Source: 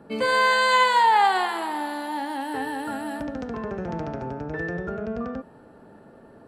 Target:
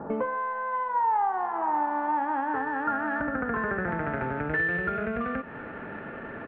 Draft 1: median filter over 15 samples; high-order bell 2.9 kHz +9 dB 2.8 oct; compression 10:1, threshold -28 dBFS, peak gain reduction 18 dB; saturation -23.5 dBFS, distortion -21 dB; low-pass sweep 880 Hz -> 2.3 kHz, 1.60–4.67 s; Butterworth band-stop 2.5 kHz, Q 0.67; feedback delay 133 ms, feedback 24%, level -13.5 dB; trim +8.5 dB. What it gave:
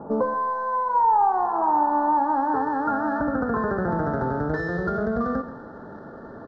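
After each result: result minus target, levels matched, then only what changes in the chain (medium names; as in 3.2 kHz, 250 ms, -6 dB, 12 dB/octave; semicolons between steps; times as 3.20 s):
2 kHz band -9.0 dB; compression: peak gain reduction -7 dB; echo-to-direct +10 dB
change: Butterworth band-stop 6.6 kHz, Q 0.67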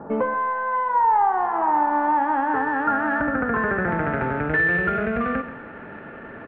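compression: peak gain reduction -7 dB; echo-to-direct +10 dB
change: compression 10:1, threshold -36 dBFS, peak gain reduction 25.5 dB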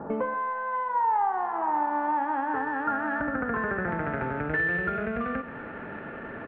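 echo-to-direct +10 dB
change: feedback delay 133 ms, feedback 24%, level -23.5 dB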